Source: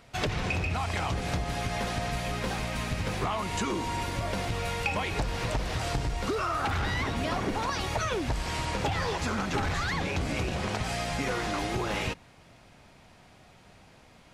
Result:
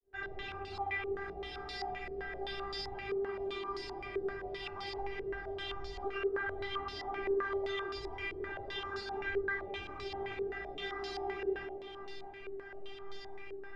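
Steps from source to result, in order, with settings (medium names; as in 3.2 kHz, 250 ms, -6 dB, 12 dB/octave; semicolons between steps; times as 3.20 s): fade-in on the opening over 0.68 s; compression 6:1, threshold -43 dBFS, peak gain reduction 17 dB; feedback comb 380 Hz, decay 0.38 s, harmonics all, mix 100%; simulated room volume 2600 m³, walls furnished, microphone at 2.7 m; speed mistake 24 fps film run at 25 fps; feedback echo behind a band-pass 188 ms, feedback 68%, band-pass 430 Hz, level -4 dB; step-sequenced low-pass 7.7 Hz 440–4600 Hz; trim +16.5 dB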